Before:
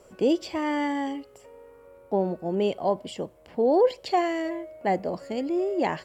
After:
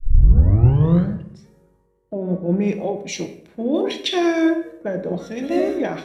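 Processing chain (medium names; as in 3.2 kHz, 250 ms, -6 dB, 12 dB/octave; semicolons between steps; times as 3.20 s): tape start-up on the opening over 1.51 s; peak limiter -21 dBFS, peak gain reduction 10 dB; formant shift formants -4 st; reverberation RT60 1.0 s, pre-delay 6 ms, DRR 5.5 dB; three bands expanded up and down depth 100%; trim +7.5 dB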